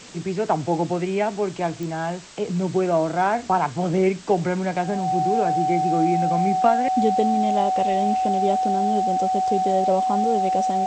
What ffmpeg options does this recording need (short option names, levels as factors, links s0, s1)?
-af "adeclick=t=4,bandreject=f=750:w=30,afwtdn=0.0089"